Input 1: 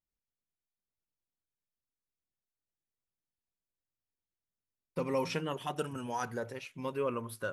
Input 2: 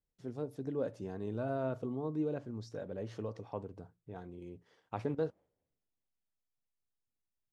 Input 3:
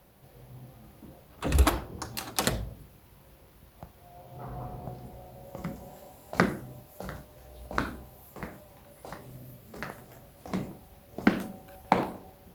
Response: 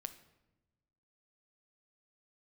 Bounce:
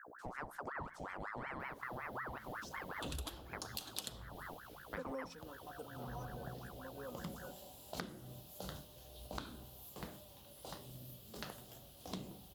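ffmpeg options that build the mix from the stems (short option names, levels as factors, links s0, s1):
-filter_complex "[0:a]equalizer=f=2400:w=1.2:g=-13,aecho=1:1:4:0.99,volume=0.562[s0];[1:a]aemphasis=mode=production:type=50kf,aeval=exprs='val(0)+0.00251*(sin(2*PI*60*n/s)+sin(2*PI*2*60*n/s)/2+sin(2*PI*3*60*n/s)/3+sin(2*PI*4*60*n/s)/4+sin(2*PI*5*60*n/s)/5)':c=same,aeval=exprs='val(0)*sin(2*PI*1000*n/s+1000*0.65/5.4*sin(2*PI*5.4*n/s))':c=same,volume=0.891,asplit=3[s1][s2][s3];[s2]volume=0.237[s4];[2:a]highshelf=f=2600:t=q:w=3:g=6.5,adelay=1600,volume=0.335,asplit=2[s5][s6];[s6]volume=0.531[s7];[s3]apad=whole_len=332192[s8];[s0][s8]sidechaingate=range=0.2:threshold=0.00631:ratio=16:detection=peak[s9];[3:a]atrim=start_sample=2205[s10];[s4][s7]amix=inputs=2:normalize=0[s11];[s11][s10]afir=irnorm=-1:irlink=0[s12];[s9][s1][s5][s12]amix=inputs=4:normalize=0,acompressor=threshold=0.01:ratio=16"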